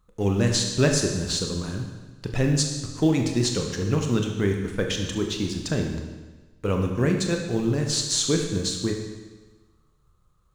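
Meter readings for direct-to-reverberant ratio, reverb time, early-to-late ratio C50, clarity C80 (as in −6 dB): 2.5 dB, 1.3 s, 5.0 dB, 6.5 dB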